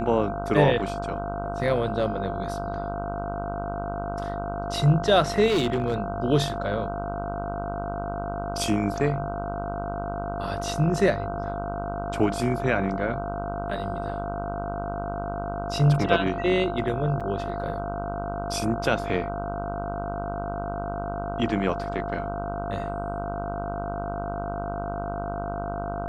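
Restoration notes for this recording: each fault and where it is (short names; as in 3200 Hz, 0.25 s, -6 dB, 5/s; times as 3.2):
buzz 50 Hz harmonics 31 -33 dBFS
tone 690 Hz -31 dBFS
5.47–5.94 clipped -19 dBFS
17.2–17.21 gap 6.2 ms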